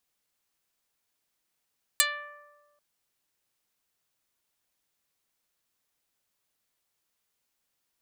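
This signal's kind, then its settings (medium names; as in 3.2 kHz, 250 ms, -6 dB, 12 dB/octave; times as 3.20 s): plucked string D5, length 0.79 s, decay 1.55 s, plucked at 0.1, dark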